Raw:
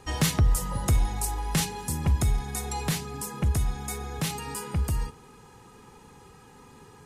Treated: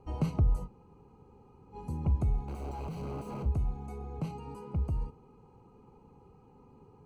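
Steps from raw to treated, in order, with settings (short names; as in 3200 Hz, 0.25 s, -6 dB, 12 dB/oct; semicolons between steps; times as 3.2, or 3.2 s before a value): 0.66–1.74 room tone, crossfade 0.06 s; 2.48–3.46 infinite clipping; running mean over 25 samples; gain -4.5 dB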